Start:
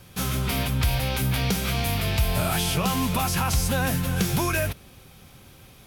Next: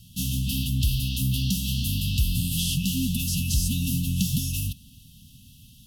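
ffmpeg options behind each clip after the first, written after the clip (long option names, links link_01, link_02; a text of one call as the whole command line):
ffmpeg -i in.wav -af "afftfilt=real='re*(1-between(b*sr/4096,270,2600))':imag='im*(1-between(b*sr/4096,270,2600))':win_size=4096:overlap=0.75" out.wav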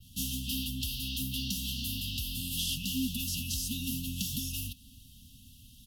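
ffmpeg -i in.wav -filter_complex "[0:a]aecho=1:1:3.2:0.52,adynamicequalizer=threshold=0.00891:dfrequency=8900:dqfactor=0.78:tfrequency=8900:tqfactor=0.78:attack=5:release=100:ratio=0.375:range=2:mode=cutabove:tftype=bell,acrossover=split=240[link_01][link_02];[link_01]acompressor=threshold=-35dB:ratio=5[link_03];[link_03][link_02]amix=inputs=2:normalize=0,volume=-4dB" out.wav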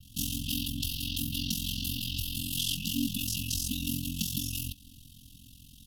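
ffmpeg -i in.wav -af "aeval=exprs='val(0)*sin(2*PI*22*n/s)':channel_layout=same,volume=4.5dB" out.wav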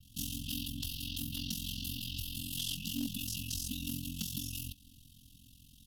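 ffmpeg -i in.wav -af "aeval=exprs='clip(val(0),-1,0.0708)':channel_layout=same,volume=-6dB" out.wav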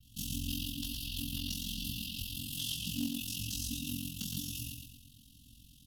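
ffmpeg -i in.wav -af "flanger=delay=17:depth=5:speed=1.1,aecho=1:1:114|228|342|456|570:0.596|0.262|0.115|0.0507|0.0223,volume=2dB" out.wav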